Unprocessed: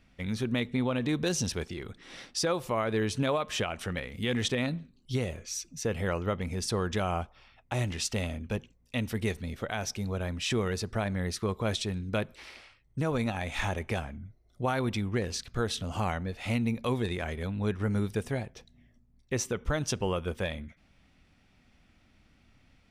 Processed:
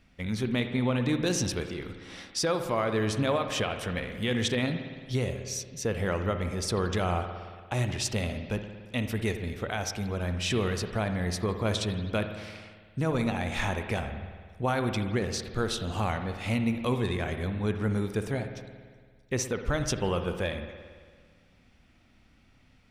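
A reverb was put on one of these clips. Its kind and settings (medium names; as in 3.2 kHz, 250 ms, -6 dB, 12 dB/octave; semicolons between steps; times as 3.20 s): spring tank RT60 1.7 s, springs 56 ms, chirp 30 ms, DRR 7 dB; trim +1 dB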